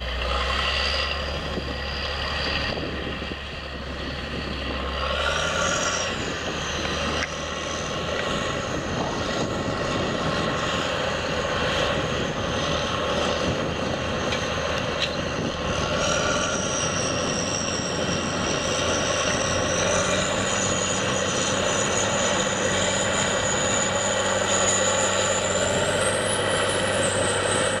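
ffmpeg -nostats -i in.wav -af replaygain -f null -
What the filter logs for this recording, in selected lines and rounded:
track_gain = +6.3 dB
track_peak = 0.213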